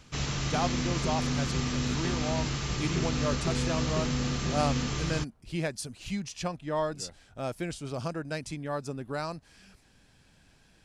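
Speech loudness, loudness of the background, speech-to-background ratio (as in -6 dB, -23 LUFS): -35.0 LUFS, -31.0 LUFS, -4.0 dB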